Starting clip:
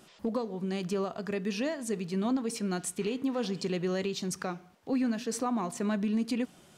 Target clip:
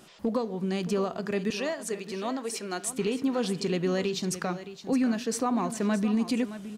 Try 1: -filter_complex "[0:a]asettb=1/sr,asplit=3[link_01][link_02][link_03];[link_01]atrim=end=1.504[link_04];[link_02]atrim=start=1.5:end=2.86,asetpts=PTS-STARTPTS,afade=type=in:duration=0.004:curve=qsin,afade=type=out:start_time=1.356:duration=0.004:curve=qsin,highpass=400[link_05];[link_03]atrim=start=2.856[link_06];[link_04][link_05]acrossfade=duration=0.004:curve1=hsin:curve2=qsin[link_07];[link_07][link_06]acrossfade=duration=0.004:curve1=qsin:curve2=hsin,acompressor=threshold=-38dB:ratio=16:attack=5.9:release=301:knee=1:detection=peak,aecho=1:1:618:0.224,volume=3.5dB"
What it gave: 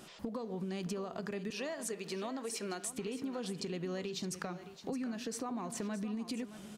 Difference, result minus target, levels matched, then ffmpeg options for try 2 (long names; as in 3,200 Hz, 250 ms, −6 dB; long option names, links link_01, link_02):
downward compressor: peak gain reduction +14 dB
-filter_complex "[0:a]asettb=1/sr,asplit=3[link_01][link_02][link_03];[link_01]atrim=end=1.504[link_04];[link_02]atrim=start=1.5:end=2.86,asetpts=PTS-STARTPTS,afade=type=in:duration=0.004:curve=qsin,afade=type=out:start_time=1.356:duration=0.004:curve=qsin,highpass=400[link_05];[link_03]atrim=start=2.856[link_06];[link_04][link_05]acrossfade=duration=0.004:curve1=hsin:curve2=qsin[link_07];[link_07][link_06]acrossfade=duration=0.004:curve1=qsin:curve2=hsin,aecho=1:1:618:0.224,volume=3.5dB"